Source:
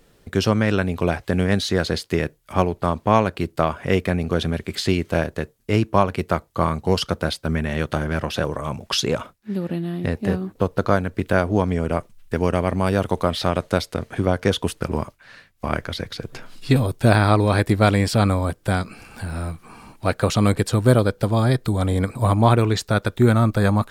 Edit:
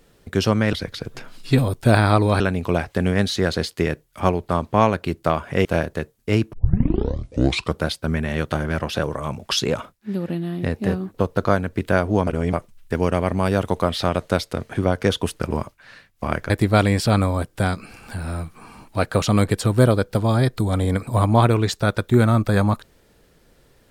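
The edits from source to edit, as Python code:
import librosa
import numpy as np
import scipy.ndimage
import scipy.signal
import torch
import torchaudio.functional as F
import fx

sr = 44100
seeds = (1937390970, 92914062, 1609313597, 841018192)

y = fx.edit(x, sr, fx.cut(start_s=3.98, length_s=1.08),
    fx.tape_start(start_s=5.94, length_s=1.32),
    fx.reverse_span(start_s=11.68, length_s=0.26),
    fx.move(start_s=15.91, length_s=1.67, to_s=0.73), tone=tone)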